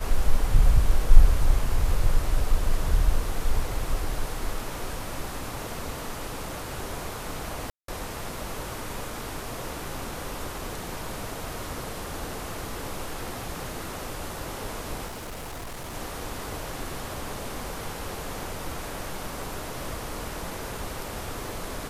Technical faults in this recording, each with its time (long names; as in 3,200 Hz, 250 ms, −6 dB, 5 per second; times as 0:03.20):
0:07.70–0:07.88: drop-out 183 ms
0:15.06–0:15.95: clipping −33.5 dBFS